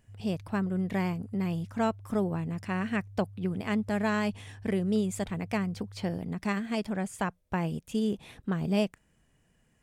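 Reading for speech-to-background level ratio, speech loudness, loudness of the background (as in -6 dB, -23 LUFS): 17.5 dB, -31.5 LUFS, -49.0 LUFS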